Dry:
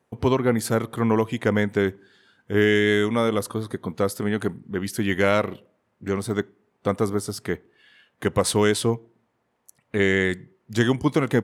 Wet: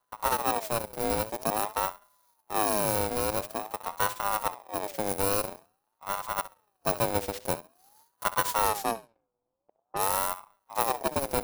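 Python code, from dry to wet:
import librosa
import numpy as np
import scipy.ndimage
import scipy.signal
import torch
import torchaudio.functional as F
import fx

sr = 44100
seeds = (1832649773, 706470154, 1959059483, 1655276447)

p1 = fx.bit_reversed(x, sr, seeds[0], block=32)
p2 = p1 + fx.room_flutter(p1, sr, wall_m=11.2, rt60_s=0.26, dry=0)
p3 = np.maximum(p2, 0.0)
p4 = fx.env_lowpass(p3, sr, base_hz=460.0, full_db=-24.5, at=(8.67, 10.01), fade=0.02)
p5 = fx.rider(p4, sr, range_db=4, speed_s=2.0)
p6 = fx.ring_lfo(p5, sr, carrier_hz=750.0, swing_pct=35, hz=0.48)
y = p6 * librosa.db_to_amplitude(-1.5)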